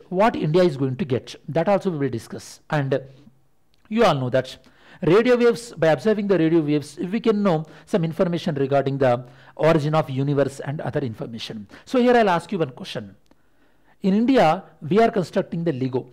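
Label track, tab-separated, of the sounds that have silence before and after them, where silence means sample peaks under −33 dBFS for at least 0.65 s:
3.910000	13.060000	sound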